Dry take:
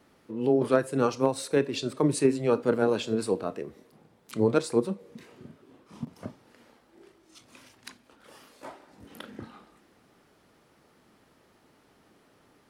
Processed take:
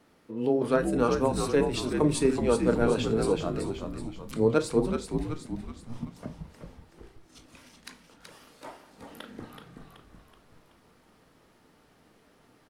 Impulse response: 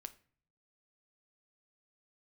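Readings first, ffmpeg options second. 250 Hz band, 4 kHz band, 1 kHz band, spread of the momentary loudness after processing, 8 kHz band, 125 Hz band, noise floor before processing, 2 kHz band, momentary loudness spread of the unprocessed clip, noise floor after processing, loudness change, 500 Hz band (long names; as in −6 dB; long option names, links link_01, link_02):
+1.0 dB, +0.5 dB, +1.0 dB, 21 LU, +0.5 dB, +2.5 dB, −63 dBFS, +0.5 dB, 21 LU, −62 dBFS, 0.0 dB, 0.0 dB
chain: -filter_complex "[0:a]asplit=7[link_01][link_02][link_03][link_04][link_05][link_06][link_07];[link_02]adelay=377,afreqshift=-79,volume=-5.5dB[link_08];[link_03]adelay=754,afreqshift=-158,volume=-11.7dB[link_09];[link_04]adelay=1131,afreqshift=-237,volume=-17.9dB[link_10];[link_05]adelay=1508,afreqshift=-316,volume=-24.1dB[link_11];[link_06]adelay=1885,afreqshift=-395,volume=-30.3dB[link_12];[link_07]adelay=2262,afreqshift=-474,volume=-36.5dB[link_13];[link_01][link_08][link_09][link_10][link_11][link_12][link_13]amix=inputs=7:normalize=0[link_14];[1:a]atrim=start_sample=2205,asetrate=61740,aresample=44100[link_15];[link_14][link_15]afir=irnorm=-1:irlink=0,volume=7.5dB"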